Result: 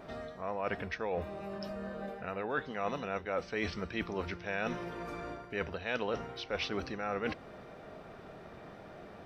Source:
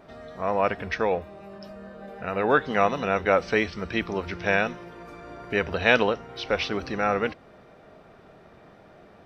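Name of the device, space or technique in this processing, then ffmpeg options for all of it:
compression on the reversed sound: -af "areverse,acompressor=threshold=0.0178:ratio=5,areverse,volume=1.19"

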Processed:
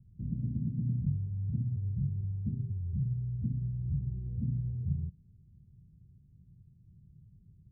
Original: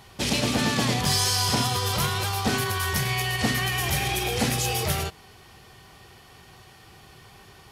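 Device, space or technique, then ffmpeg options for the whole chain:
the neighbour's flat through the wall: -af "lowpass=f=180:w=0.5412,lowpass=f=180:w=1.3066,equalizer=f=160:t=o:w=0.77:g=3.5,volume=0.631"

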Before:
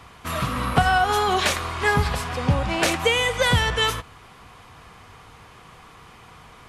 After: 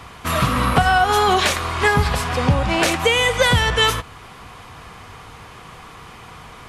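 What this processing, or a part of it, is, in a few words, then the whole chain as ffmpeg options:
clipper into limiter: -af "asoftclip=type=hard:threshold=0.422,alimiter=limit=0.237:level=0:latency=1:release=430,volume=2.24"

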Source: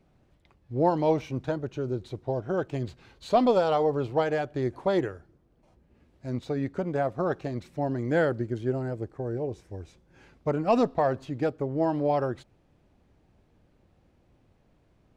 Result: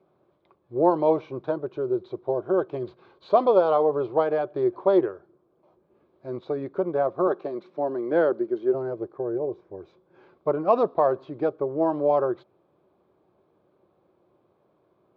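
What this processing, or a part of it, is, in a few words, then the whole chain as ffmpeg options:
kitchen radio: -filter_complex "[0:a]asettb=1/sr,asplit=3[s0][s1][s2];[s0]atrim=end=7.274[s3];[s1]atrim=start=7.27:end=8.74,asetpts=PTS-STARTPTS,afade=t=in:d=0.004:c=qsin,afade=t=out:st=1.466:d=0.004:c=qsin,highpass=f=170:w=0.5412,highpass=f=170:w=1.3066[s4];[s2]atrim=start=8.736[s5];[s3][s4]acrossfade=d=0.004:c1=hsin:c2=qsin[s6];[s6][s5]acrossfade=d=0.004:c1=qsin:c2=hsin,highpass=200,equalizer=f=250:t=q:w=4:g=-8,equalizer=f=370:t=q:w=4:g=9,equalizer=f=580:t=q:w=4:g=5,equalizer=f=1100:t=q:w=4:g=8,equalizer=f=1900:t=q:w=4:g=-10,equalizer=f=2800:t=q:w=4:g=-9,lowpass=f=3600:w=0.5412,lowpass=f=3600:w=1.3066,asettb=1/sr,asplit=3[s7][s8][s9];[s7]atrim=end=9.384[s10];[s8]atrim=start=9.38:end=9.78,asetpts=PTS-STARTPTS,afade=t=in:d=0.004:c=qsin,afade=t=out:st=0.396:d=0.004:c=qsin,highshelf=f=2600:g=-9.5[s11];[s9]atrim=start=9.776[s12];[s10][s11]acrossfade=d=0.004:c1=hsin:c2=qsin[s13];[s13][s12]acrossfade=d=0.004:c1=qsin:c2=hsin"

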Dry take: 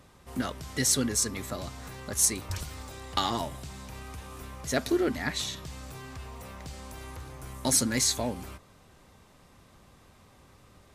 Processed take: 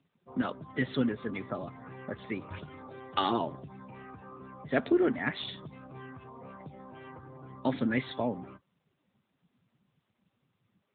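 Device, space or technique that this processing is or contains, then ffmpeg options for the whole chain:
mobile call with aggressive noise cancelling: -filter_complex "[0:a]highpass=73,asplit=3[s0][s1][s2];[s0]afade=t=out:st=2.59:d=0.02[s3];[s1]adynamicequalizer=threshold=0.00447:dfrequency=370:dqfactor=2.2:tfrequency=370:tqfactor=2.2:attack=5:release=100:ratio=0.375:range=2.5:mode=boostabove:tftype=bell,afade=t=in:st=2.59:d=0.02,afade=t=out:st=3.62:d=0.02[s4];[s2]afade=t=in:st=3.62:d=0.02[s5];[s3][s4][s5]amix=inputs=3:normalize=0,highpass=120,afftdn=nr=24:nf=-45,volume=1.12" -ar 8000 -c:a libopencore_amrnb -b:a 10200

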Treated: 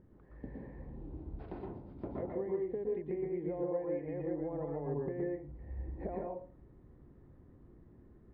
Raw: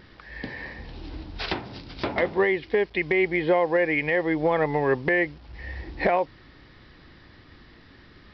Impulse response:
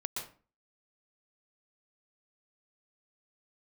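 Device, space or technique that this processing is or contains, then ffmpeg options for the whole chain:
television next door: -filter_complex "[0:a]acompressor=threshold=0.0501:ratio=3,lowpass=500[s0];[1:a]atrim=start_sample=2205[s1];[s0][s1]afir=irnorm=-1:irlink=0,volume=0.447"

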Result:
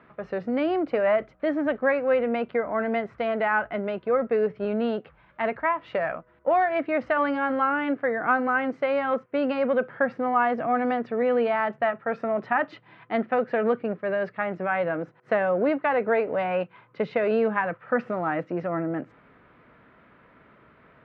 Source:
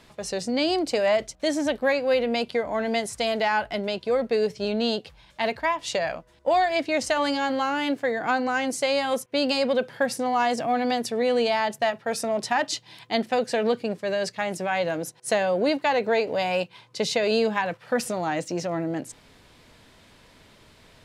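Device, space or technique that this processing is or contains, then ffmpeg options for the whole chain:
bass cabinet: -af "highpass=76,equalizer=f=92:t=q:w=4:g=-10,equalizer=f=860:t=q:w=4:g=-3,equalizer=f=1300:t=q:w=4:g=8,lowpass=f=2100:w=0.5412,lowpass=f=2100:w=1.3066"

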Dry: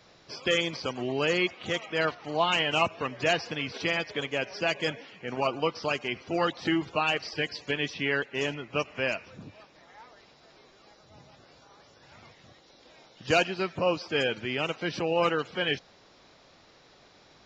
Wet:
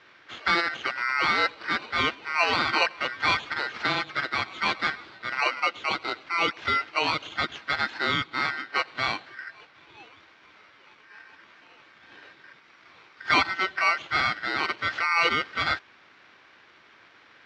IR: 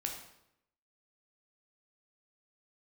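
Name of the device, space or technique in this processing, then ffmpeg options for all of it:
ring modulator pedal into a guitar cabinet: -filter_complex "[0:a]asettb=1/sr,asplit=3[s0][s1][s2];[s0]atrim=end=5.534[s3];[s1]atrim=start=5.53:end=7.36,asetpts=PTS-STARTPTS,afade=t=in:d=0.004:c=qsin,afade=t=out:st=1.826:d=0.004:c=qsin,highpass=290[s4];[s2]atrim=start=7.356[s5];[s3][s4]acrossfade=d=0.004:c1=hsin:c2=qsin[s6];[s6][s5]acrossfade=d=0.004:c1=qsin:c2=hsin,aeval=exprs='val(0)*sgn(sin(2*PI*1700*n/s))':c=same,highpass=95,equalizer=f=180:t=q:w=4:g=-3,equalizer=f=330:t=q:w=4:g=6,equalizer=f=1600:t=q:w=4:g=7,lowpass=f=4100:w=0.5412,lowpass=f=4100:w=1.3066,volume=1.26"

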